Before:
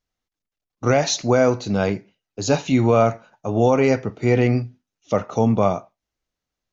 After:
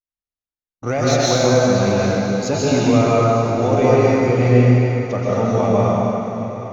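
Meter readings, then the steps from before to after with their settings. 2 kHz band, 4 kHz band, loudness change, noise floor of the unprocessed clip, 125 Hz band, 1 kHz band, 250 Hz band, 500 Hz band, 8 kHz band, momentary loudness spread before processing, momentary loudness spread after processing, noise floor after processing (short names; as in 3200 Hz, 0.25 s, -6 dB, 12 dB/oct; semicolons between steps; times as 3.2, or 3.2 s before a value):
+3.0 dB, +4.5 dB, +3.5 dB, under -85 dBFS, +6.5 dB, +4.0 dB, +4.0 dB, +4.0 dB, n/a, 9 LU, 7 LU, under -85 dBFS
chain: gate -51 dBFS, range -20 dB; in parallel at -6 dB: soft clip -20.5 dBFS, distortion -7 dB; on the sum: swung echo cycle 1.025 s, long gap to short 3:1, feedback 32%, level -16 dB; plate-style reverb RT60 3 s, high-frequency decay 0.8×, pre-delay 0.11 s, DRR -7 dB; gain -6 dB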